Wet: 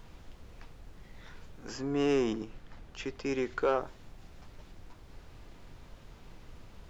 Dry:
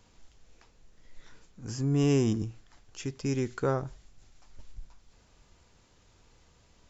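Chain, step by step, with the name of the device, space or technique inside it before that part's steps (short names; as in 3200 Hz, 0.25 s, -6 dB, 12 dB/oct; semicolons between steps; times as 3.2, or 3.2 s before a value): aircraft cabin announcement (BPF 430–4000 Hz; soft clip -24 dBFS, distortion -17 dB; brown noise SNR 11 dB); 1.77–3.62 high shelf 4800 Hz -5.5 dB; gain +5.5 dB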